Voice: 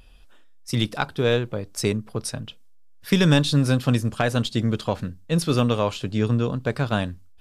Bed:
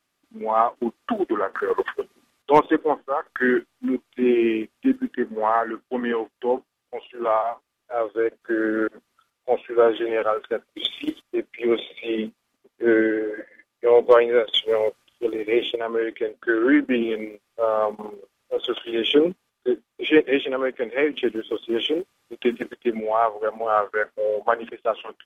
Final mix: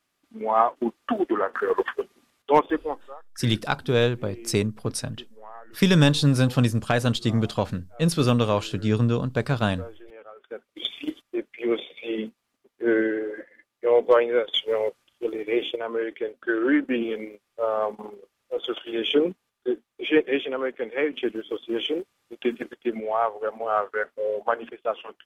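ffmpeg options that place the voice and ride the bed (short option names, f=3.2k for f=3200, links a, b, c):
-filter_complex "[0:a]adelay=2700,volume=0dB[a];[1:a]volume=19dB,afade=t=out:st=2.36:d=0.84:silence=0.0749894,afade=t=in:st=10.35:d=0.55:silence=0.105925[b];[a][b]amix=inputs=2:normalize=0"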